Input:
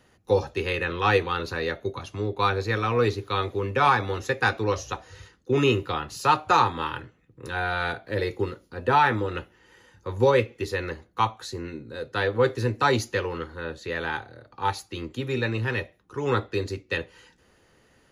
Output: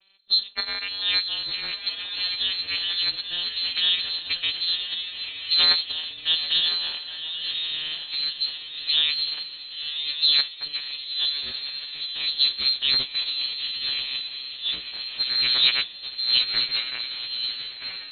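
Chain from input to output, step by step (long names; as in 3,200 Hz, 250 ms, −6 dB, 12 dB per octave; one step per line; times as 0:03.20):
vocoder with a gliding carrier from G3, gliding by −9 semitones
voice inversion scrambler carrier 3,900 Hz
feedback delay with all-pass diffusion 1,036 ms, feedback 42%, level −6.5 dB
formants moved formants +3 semitones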